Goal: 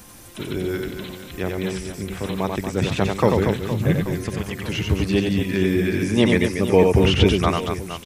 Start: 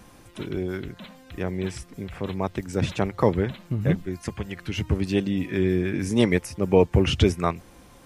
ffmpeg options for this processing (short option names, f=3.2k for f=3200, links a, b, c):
-filter_complex "[0:a]aecho=1:1:90|234|464.4|833|1423:0.631|0.398|0.251|0.158|0.1,crystalizer=i=2.5:c=0,acrossover=split=3900[a][b];[b]acompressor=threshold=-42dB:ratio=4:attack=1:release=60[c];[a][c]amix=inputs=2:normalize=0,volume=2dB"